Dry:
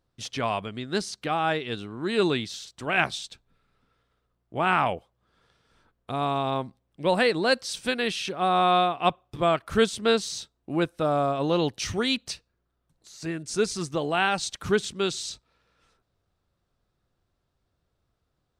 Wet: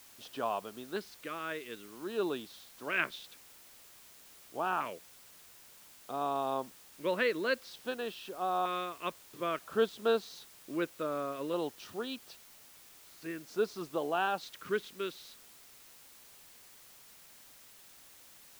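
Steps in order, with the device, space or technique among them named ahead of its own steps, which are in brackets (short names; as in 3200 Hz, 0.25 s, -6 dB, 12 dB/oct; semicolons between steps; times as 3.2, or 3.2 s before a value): shortwave radio (BPF 310–2700 Hz; tremolo 0.29 Hz, depth 38%; LFO notch square 0.52 Hz 770–2100 Hz; white noise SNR 19 dB); gain -4.5 dB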